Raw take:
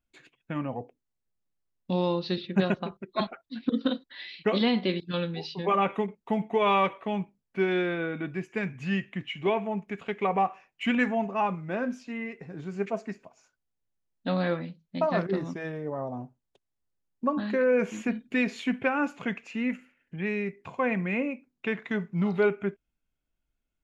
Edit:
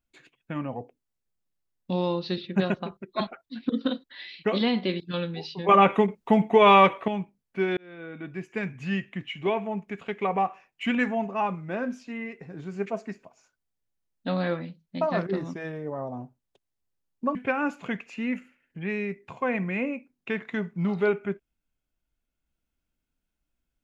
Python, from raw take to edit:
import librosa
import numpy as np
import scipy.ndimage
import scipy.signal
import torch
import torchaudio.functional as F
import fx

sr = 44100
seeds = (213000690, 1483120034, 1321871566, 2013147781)

y = fx.edit(x, sr, fx.clip_gain(start_s=5.69, length_s=1.39, db=7.5),
    fx.fade_in_span(start_s=7.77, length_s=0.78),
    fx.cut(start_s=17.35, length_s=1.37), tone=tone)